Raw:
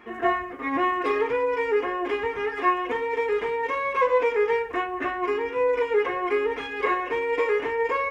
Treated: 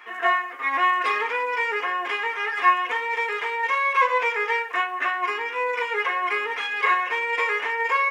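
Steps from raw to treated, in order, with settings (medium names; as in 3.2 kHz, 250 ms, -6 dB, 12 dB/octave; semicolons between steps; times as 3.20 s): high-pass 1.1 kHz 12 dB/octave; trim +7.5 dB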